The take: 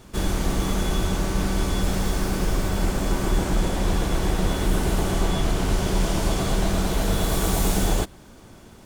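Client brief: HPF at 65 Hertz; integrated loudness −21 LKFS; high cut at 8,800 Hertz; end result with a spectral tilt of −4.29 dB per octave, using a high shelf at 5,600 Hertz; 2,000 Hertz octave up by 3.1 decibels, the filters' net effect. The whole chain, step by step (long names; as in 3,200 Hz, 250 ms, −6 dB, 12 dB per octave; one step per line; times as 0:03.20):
high-pass filter 65 Hz
low-pass filter 8,800 Hz
parametric band 2,000 Hz +3.5 dB
high-shelf EQ 5,600 Hz +5 dB
level +4.5 dB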